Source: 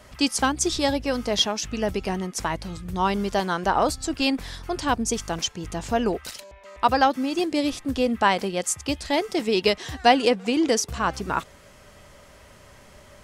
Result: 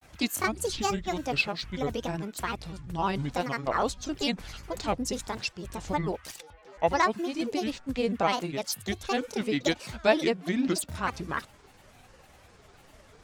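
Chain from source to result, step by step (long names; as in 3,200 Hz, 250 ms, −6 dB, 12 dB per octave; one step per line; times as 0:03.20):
granular cloud, spray 17 ms, pitch spread up and down by 7 semitones
level −4.5 dB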